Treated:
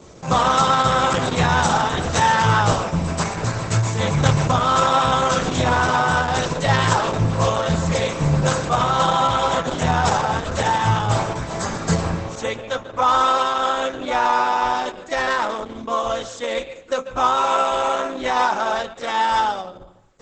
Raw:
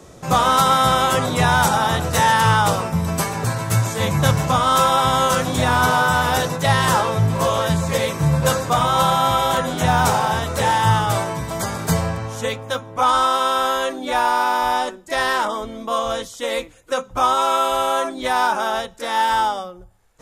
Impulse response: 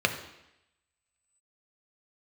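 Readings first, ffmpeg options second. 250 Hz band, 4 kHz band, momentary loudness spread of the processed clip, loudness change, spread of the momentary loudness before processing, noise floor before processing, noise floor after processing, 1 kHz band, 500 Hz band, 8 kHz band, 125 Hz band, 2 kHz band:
−0.5 dB, −2.0 dB, 9 LU, −1.0 dB, 10 LU, −42 dBFS, −38 dBFS, −1.0 dB, −0.5 dB, −2.5 dB, −0.5 dB, −1.5 dB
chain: -filter_complex "[0:a]asplit=2[link_01][link_02];[1:a]atrim=start_sample=2205,adelay=140[link_03];[link_02][link_03]afir=irnorm=-1:irlink=0,volume=-25dB[link_04];[link_01][link_04]amix=inputs=2:normalize=0" -ar 48000 -c:a libopus -b:a 10k

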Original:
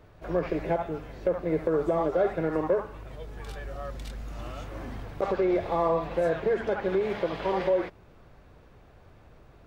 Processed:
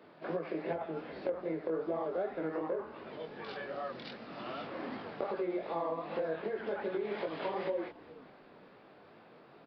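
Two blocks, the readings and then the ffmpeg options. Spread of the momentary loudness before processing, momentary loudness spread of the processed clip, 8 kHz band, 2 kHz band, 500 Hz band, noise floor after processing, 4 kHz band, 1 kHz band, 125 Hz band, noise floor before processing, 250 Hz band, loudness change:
14 LU, 21 LU, can't be measured, −6.0 dB, −9.0 dB, −58 dBFS, −3.5 dB, −8.0 dB, −13.5 dB, −54 dBFS, −8.0 dB, −9.0 dB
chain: -filter_complex "[0:a]highpass=frequency=190:width=0.5412,highpass=frequency=190:width=1.3066,acompressor=threshold=-34dB:ratio=6,flanger=delay=18:depth=7:speed=2.6,asplit=4[link_01][link_02][link_03][link_04];[link_02]adelay=418,afreqshift=-82,volume=-20dB[link_05];[link_03]adelay=836,afreqshift=-164,volume=-29.9dB[link_06];[link_04]adelay=1254,afreqshift=-246,volume=-39.8dB[link_07];[link_01][link_05][link_06][link_07]amix=inputs=4:normalize=0,aresample=11025,aresample=44100,volume=4dB"

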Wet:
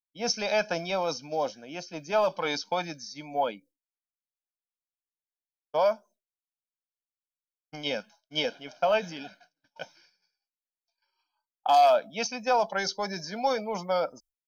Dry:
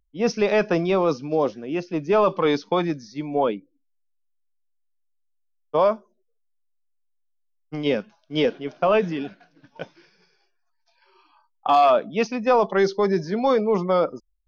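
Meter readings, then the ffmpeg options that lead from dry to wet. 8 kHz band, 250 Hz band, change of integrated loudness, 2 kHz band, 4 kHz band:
can't be measured, −13.5 dB, −6.0 dB, −3.0 dB, +1.0 dB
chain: -af "bass=frequency=250:gain=-11,treble=frequency=4000:gain=14,aecho=1:1:1.3:0.72,agate=range=-33dB:threshold=-44dB:ratio=3:detection=peak,volume=-6.5dB"

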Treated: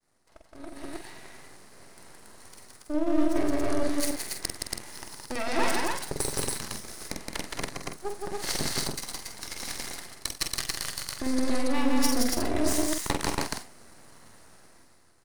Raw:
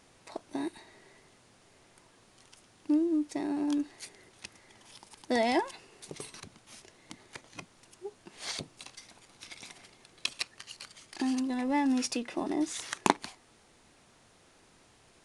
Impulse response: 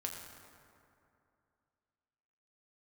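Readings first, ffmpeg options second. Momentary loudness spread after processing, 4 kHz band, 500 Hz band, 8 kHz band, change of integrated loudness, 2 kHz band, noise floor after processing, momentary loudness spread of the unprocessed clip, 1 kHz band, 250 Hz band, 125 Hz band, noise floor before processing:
16 LU, +7.0 dB, +5.0 dB, +11.0 dB, +2.0 dB, +5.0 dB, −57 dBFS, 21 LU, +2.0 dB, +1.5 dB, +12.5 dB, −62 dBFS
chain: -filter_complex "[0:a]equalizer=frequency=6600:width_type=o:width=1.2:gain=-9.5,areverse,acompressor=threshold=-42dB:ratio=8,areverse,asuperstop=centerf=2900:order=12:qfactor=1.6,agate=range=-33dB:threshold=-59dB:ratio=3:detection=peak,aeval=exprs='max(val(0),0)':channel_layout=same,asplit=2[link_01][link_02];[link_02]aecho=0:1:46.65|169.1|279.9:0.447|0.794|0.891[link_03];[link_01][link_03]amix=inputs=2:normalize=0,dynaudnorm=framelen=150:gausssize=13:maxgain=15.5dB,aeval=exprs='0.251*(cos(1*acos(clip(val(0)/0.251,-1,1)))-cos(1*PI/2))+0.0282*(cos(3*acos(clip(val(0)/0.251,-1,1)))-cos(3*PI/2))+0.00794*(cos(5*acos(clip(val(0)/0.251,-1,1)))-cos(5*PI/2))+0.0224*(cos(6*acos(clip(val(0)/0.251,-1,1)))-cos(6*PI/2))+0.0126*(cos(7*acos(clip(val(0)/0.251,-1,1)))-cos(7*PI/2))':channel_layout=same,highshelf=frequency=3000:gain=9.5,asplit=2[link_04][link_05];[link_05]adelay=47,volume=-7.5dB[link_06];[link_04][link_06]amix=inputs=2:normalize=0"

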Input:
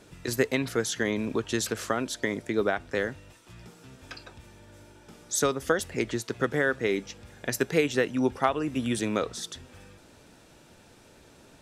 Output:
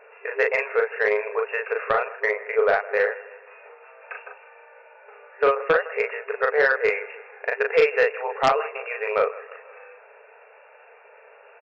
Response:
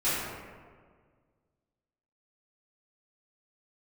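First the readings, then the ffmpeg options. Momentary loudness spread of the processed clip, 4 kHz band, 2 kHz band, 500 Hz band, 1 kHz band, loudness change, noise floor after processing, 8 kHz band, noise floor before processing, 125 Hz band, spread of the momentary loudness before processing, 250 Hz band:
13 LU, −4.0 dB, +8.0 dB, +7.0 dB, +7.5 dB, +5.5 dB, −51 dBFS, below −20 dB, −55 dBFS, below −10 dB, 11 LU, −15.5 dB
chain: -filter_complex "[0:a]afftfilt=real='re*between(b*sr/4096,400,2800)':imag='im*between(b*sr/4096,400,2800)':win_size=4096:overlap=0.75,asplit=2[link_01][link_02];[link_02]adelay=38,volume=-3dB[link_03];[link_01][link_03]amix=inputs=2:normalize=0,asplit=2[link_04][link_05];[link_05]aecho=0:1:159|318|477|636:0.112|0.0539|0.0259|0.0124[link_06];[link_04][link_06]amix=inputs=2:normalize=0,aeval=exprs='0.422*(cos(1*acos(clip(val(0)/0.422,-1,1)))-cos(1*PI/2))+0.15*(cos(5*acos(clip(val(0)/0.422,-1,1)))-cos(5*PI/2))+0.0299*(cos(7*acos(clip(val(0)/0.422,-1,1)))-cos(7*PI/2))':channel_layout=same"

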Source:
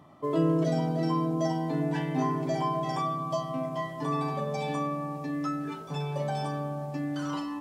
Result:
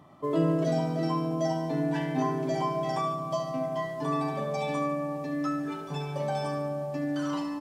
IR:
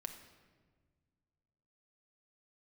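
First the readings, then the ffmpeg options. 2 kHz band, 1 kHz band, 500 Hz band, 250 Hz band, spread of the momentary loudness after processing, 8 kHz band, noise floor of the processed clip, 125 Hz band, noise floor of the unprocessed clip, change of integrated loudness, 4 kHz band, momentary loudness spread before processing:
+1.5 dB, −0.5 dB, +2.0 dB, 0.0 dB, 5 LU, +0.5 dB, −37 dBFS, −1.5 dB, −40 dBFS, +0.5 dB, 0.0 dB, 7 LU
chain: -af "aecho=1:1:72|144|216|288|360|432|504:0.355|0.206|0.119|0.0692|0.0402|0.0233|0.0135"

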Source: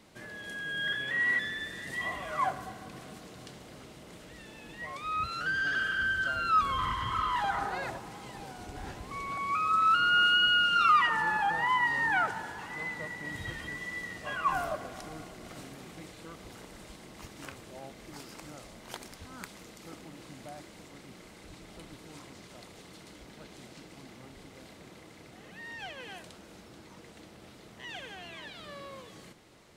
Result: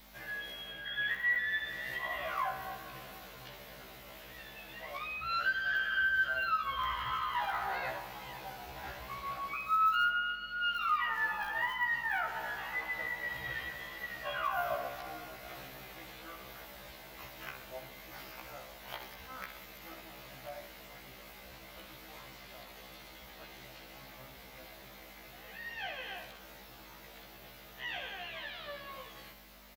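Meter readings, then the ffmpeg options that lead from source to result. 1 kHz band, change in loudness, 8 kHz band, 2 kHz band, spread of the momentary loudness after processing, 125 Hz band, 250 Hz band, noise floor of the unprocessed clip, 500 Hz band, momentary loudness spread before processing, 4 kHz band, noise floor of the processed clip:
−5.5 dB, −6.5 dB, −6.0 dB, −3.0 dB, 20 LU, −8.0 dB, −9.5 dB, −52 dBFS, −2.0 dB, 24 LU, −8.5 dB, −53 dBFS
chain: -filter_complex "[0:a]tiltshelf=frequency=910:gain=-6,bandreject=frequency=50:width_type=h:width=6,bandreject=frequency=100:width_type=h:width=6,bandreject=frequency=150:width_type=h:width=6,bandreject=frequency=200:width_type=h:width=6,bandreject=frequency=250:width_type=h:width=6,bandreject=frequency=300:width_type=h:width=6,bandreject=frequency=350:width_type=h:width=6,bandreject=frequency=400:width_type=h:width=6,bandreject=frequency=450:width_type=h:width=6,acompressor=threshold=-30dB:ratio=8,equalizer=frequency=250:width_type=o:width=0.67:gain=-7,equalizer=frequency=630:width_type=o:width=0.67:gain=5,equalizer=frequency=10000:width_type=o:width=0.67:gain=-9,asplit=2[link_01][link_02];[link_02]aecho=0:1:64|128|192|256|320|384:0.282|0.155|0.0853|0.0469|0.0258|0.0142[link_03];[link_01][link_03]amix=inputs=2:normalize=0,acrossover=split=3600[link_04][link_05];[link_05]acompressor=threshold=-59dB:ratio=4:attack=1:release=60[link_06];[link_04][link_06]amix=inputs=2:normalize=0,aeval=exprs='val(0)+0.00141*(sin(2*PI*50*n/s)+sin(2*PI*2*50*n/s)/2+sin(2*PI*3*50*n/s)/3+sin(2*PI*4*50*n/s)/4+sin(2*PI*5*50*n/s)/5)':channel_layout=same,asoftclip=type=hard:threshold=-25dB,aexciter=amount=4.7:drive=8.7:freq=11000,afftfilt=real='re*1.73*eq(mod(b,3),0)':imag='im*1.73*eq(mod(b,3),0)':win_size=2048:overlap=0.75,volume=1.5dB"

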